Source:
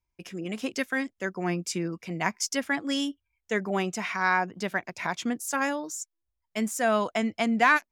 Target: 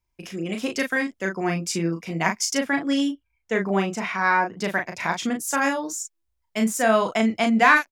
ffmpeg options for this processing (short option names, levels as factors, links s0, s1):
-filter_complex "[0:a]asettb=1/sr,asplit=3[s0][s1][s2];[s0]atrim=end=2.574[s3];[s1]atrim=start=2.57:end=4.57,asetpts=PTS-STARTPTS,afade=t=in:d=0.004:c=qsin,afade=t=out:st=1.996:d=0.004:c=qsin,highshelf=f=3500:g=-7.5[s4];[s2]atrim=start=4.566[s5];[s3][s4]acrossfade=d=0.004:c1=hsin:c2=qsin[s6];[s6][s5]acrossfade=d=0.004:c1=qsin:c2=hsin,asplit=2[s7][s8];[s8]adelay=36,volume=0.562[s9];[s7][s9]amix=inputs=2:normalize=0,volume=1.58"